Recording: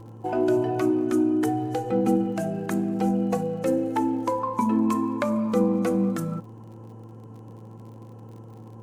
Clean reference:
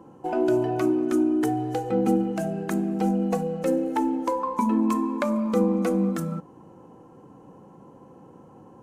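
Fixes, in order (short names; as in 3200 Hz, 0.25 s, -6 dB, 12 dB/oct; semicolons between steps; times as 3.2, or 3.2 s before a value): de-click; de-hum 112 Hz, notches 4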